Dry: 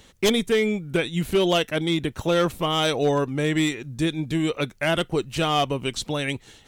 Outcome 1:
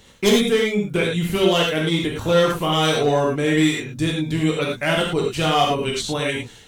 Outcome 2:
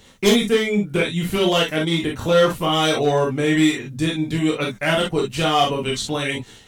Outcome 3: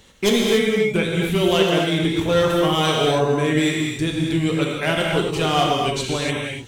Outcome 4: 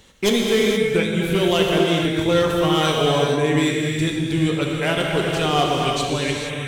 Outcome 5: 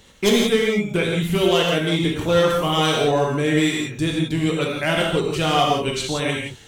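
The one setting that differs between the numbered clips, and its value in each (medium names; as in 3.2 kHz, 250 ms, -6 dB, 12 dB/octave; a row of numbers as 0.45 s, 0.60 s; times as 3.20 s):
gated-style reverb, gate: 130 ms, 80 ms, 310 ms, 500 ms, 200 ms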